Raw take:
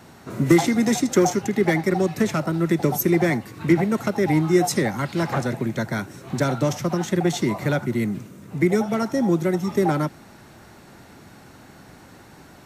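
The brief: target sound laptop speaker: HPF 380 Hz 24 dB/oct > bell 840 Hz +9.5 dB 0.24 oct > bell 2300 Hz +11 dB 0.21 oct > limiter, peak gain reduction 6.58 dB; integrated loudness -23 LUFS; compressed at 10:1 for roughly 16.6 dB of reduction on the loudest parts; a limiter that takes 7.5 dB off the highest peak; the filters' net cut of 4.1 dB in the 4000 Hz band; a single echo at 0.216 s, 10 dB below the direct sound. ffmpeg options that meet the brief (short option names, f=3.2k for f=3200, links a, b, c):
-af "equalizer=f=4k:t=o:g=-6,acompressor=threshold=-28dB:ratio=10,alimiter=level_in=1dB:limit=-24dB:level=0:latency=1,volume=-1dB,highpass=f=380:w=0.5412,highpass=f=380:w=1.3066,equalizer=f=840:t=o:w=0.24:g=9.5,equalizer=f=2.3k:t=o:w=0.21:g=11,aecho=1:1:216:0.316,volume=16dB,alimiter=limit=-12dB:level=0:latency=1"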